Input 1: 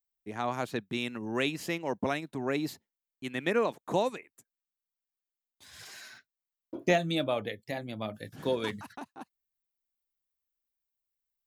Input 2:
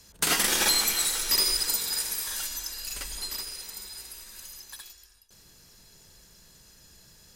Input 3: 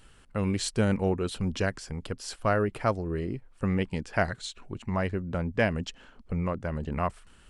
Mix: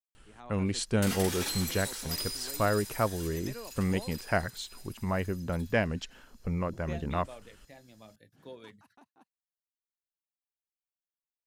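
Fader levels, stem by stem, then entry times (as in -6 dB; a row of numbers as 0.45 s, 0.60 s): -17.0 dB, -12.0 dB, -2.0 dB; 0.00 s, 0.80 s, 0.15 s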